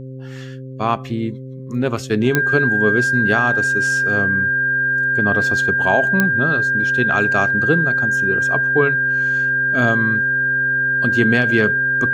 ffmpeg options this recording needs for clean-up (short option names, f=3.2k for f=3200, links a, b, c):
-af "adeclick=t=4,bandreject=f=131.2:t=h:w=4,bandreject=f=262.4:t=h:w=4,bandreject=f=393.6:t=h:w=4,bandreject=f=524.8:t=h:w=4,bandreject=f=1.6k:w=30"